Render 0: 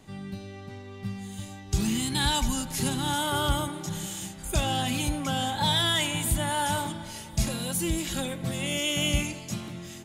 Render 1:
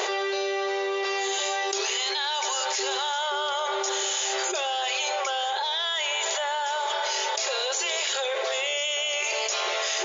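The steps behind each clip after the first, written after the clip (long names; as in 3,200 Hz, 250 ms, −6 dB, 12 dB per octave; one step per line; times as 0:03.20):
brick-wall band-pass 360–7,200 Hz
envelope flattener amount 100%
level −3.5 dB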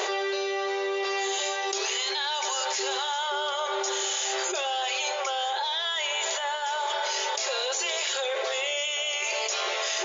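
flanger 0.83 Hz, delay 5.1 ms, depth 1.1 ms, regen −68%
level +3 dB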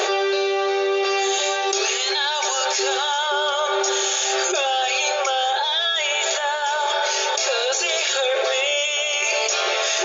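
notch comb filter 1,000 Hz
level +8.5 dB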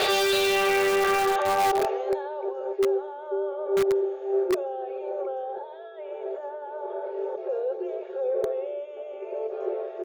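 low-pass filter sweep 4,600 Hz → 350 Hz, 0:00.16–0:02.54
multiband delay without the direct sound lows, highs 120 ms, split 4,800 Hz
in parallel at −7 dB: wrap-around overflow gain 15 dB
on the sum: level −4.5 dB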